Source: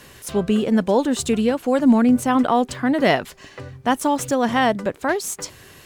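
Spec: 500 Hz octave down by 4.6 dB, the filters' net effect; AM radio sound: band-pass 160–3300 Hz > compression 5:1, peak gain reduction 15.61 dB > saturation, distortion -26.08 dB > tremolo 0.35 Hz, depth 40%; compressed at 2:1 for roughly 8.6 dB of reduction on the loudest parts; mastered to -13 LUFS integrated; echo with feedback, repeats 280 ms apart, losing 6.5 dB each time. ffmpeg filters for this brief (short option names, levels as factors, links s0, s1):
-af "equalizer=f=500:t=o:g=-5.5,acompressor=threshold=0.0398:ratio=2,highpass=160,lowpass=3300,aecho=1:1:280|560|840|1120|1400|1680:0.473|0.222|0.105|0.0491|0.0231|0.0109,acompressor=threshold=0.0126:ratio=5,asoftclip=threshold=0.0398,tremolo=f=0.35:d=0.4,volume=31.6"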